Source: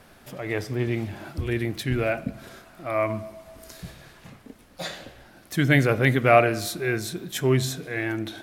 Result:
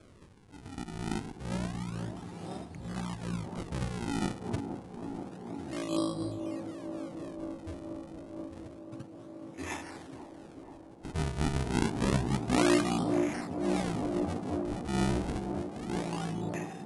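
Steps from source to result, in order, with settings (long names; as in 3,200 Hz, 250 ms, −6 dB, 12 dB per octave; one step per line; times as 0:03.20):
elliptic band-pass filter 160–7,900 Hz
in parallel at −1 dB: downward compressor, threshold −39 dBFS, peak gain reduction 25 dB
on the sum: sample-and-hold swept by an LFO 23×, swing 160% 0.57 Hz
on a send: delay with a band-pass on its return 241 ms, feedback 82%, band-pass 830 Hz, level −5 dB
on the sum: wrong playback speed 15 ips tape played at 7.5 ips
amplitude modulation by smooth noise, depth 60%
level −5.5 dB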